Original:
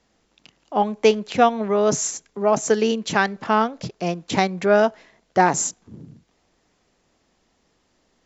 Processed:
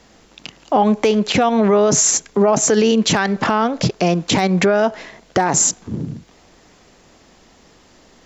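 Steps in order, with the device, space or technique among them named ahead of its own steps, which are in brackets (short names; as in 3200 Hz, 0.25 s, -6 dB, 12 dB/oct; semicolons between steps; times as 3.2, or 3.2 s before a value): loud club master (compressor 2:1, threshold -22 dBFS, peak gain reduction 7 dB; hard clip -10.5 dBFS, distortion -31 dB; maximiser +21 dB); gain -5 dB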